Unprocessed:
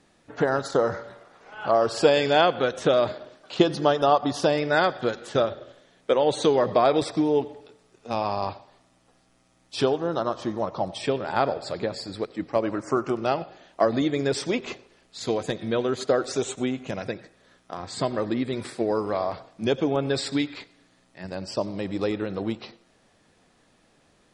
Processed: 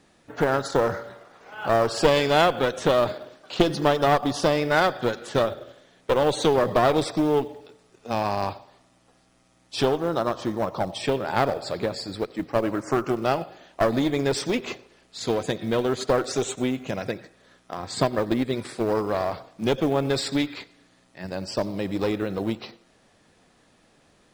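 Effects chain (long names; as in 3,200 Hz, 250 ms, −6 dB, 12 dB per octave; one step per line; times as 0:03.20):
asymmetric clip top −24.5 dBFS
floating-point word with a short mantissa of 4 bits
0:17.87–0:18.70: transient designer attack +4 dB, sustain −4 dB
level +2 dB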